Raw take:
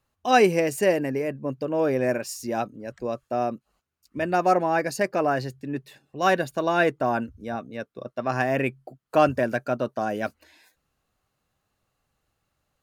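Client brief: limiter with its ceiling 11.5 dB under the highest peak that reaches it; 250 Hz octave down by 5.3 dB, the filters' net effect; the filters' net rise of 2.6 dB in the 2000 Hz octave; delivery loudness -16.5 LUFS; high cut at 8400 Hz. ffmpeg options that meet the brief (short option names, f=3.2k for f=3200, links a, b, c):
-af "lowpass=8.4k,equalizer=f=250:t=o:g=-7.5,equalizer=f=2k:t=o:g=3.5,volume=13dB,alimiter=limit=-4dB:level=0:latency=1"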